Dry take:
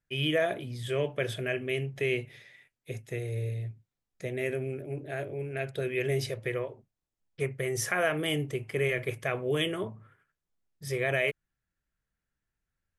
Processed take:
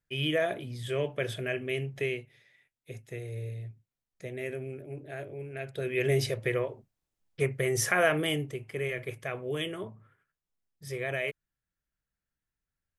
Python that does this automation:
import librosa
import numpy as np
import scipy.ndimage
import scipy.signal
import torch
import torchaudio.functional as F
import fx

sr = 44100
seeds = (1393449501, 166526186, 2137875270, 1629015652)

y = fx.gain(x, sr, db=fx.line((2.04, -1.0), (2.28, -11.0), (2.98, -4.5), (5.65, -4.5), (6.08, 3.0), (8.14, 3.0), (8.57, -4.5)))